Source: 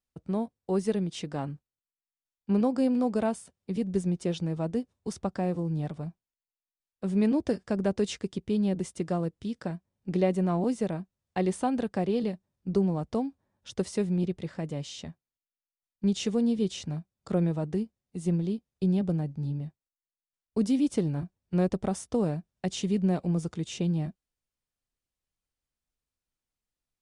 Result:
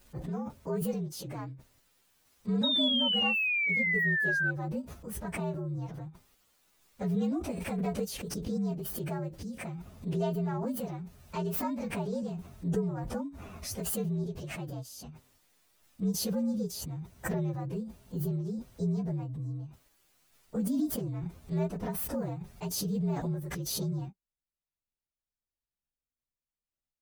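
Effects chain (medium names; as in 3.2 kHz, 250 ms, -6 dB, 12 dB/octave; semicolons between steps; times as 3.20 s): frequency axis rescaled in octaves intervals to 119%; painted sound fall, 2.63–4.51 s, 1.5–3.8 kHz -24 dBFS; swell ahead of each attack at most 21 dB/s; trim -5 dB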